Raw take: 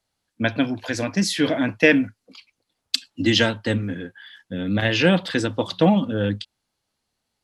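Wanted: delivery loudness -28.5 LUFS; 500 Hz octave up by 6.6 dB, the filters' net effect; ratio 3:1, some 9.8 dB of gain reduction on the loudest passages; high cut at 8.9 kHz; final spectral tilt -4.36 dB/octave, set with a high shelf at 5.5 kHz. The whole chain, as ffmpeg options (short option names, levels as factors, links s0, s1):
-af "lowpass=8900,equalizer=f=500:t=o:g=7.5,highshelf=f=5500:g=-3.5,acompressor=threshold=0.1:ratio=3,volume=0.668"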